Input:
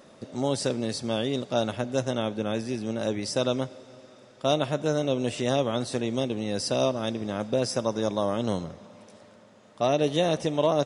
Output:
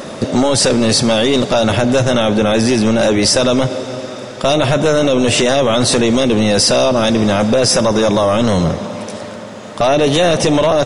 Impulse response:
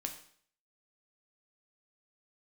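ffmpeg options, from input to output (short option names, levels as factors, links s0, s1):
-af "acompressor=threshold=0.0562:ratio=6,apsyclip=39.8,volume=0.422"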